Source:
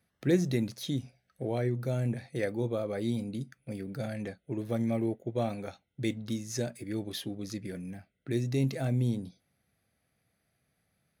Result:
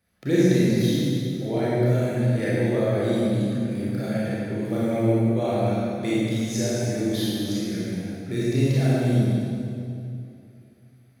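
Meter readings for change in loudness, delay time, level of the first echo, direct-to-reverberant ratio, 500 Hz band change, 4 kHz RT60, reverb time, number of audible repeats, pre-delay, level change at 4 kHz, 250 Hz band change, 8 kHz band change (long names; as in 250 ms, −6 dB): +9.5 dB, no echo audible, no echo audible, −9.5 dB, +10.0 dB, 2.1 s, 2.6 s, no echo audible, 27 ms, +9.5 dB, +10.0 dB, +9.0 dB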